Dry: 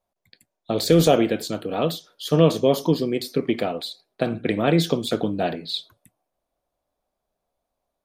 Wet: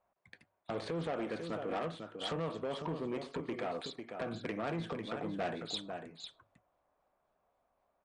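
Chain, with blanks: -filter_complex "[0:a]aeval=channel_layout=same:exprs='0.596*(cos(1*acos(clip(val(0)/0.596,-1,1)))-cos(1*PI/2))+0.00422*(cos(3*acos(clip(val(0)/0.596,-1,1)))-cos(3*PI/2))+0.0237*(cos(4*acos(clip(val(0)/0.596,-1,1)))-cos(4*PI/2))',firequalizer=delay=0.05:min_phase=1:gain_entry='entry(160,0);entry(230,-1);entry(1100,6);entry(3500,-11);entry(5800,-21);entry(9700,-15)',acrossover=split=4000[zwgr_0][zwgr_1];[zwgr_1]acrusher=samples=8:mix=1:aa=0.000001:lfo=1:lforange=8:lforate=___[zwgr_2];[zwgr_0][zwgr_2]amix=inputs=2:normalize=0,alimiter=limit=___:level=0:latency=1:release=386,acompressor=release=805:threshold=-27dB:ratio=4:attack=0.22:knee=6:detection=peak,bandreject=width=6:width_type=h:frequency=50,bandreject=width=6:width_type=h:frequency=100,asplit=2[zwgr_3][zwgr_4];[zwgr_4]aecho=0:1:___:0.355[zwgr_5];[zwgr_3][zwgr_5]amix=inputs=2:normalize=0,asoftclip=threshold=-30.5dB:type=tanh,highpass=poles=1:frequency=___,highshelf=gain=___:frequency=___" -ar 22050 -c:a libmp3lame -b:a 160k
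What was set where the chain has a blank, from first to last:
3.8, -13.5dB, 498, 41, 10.5, 2600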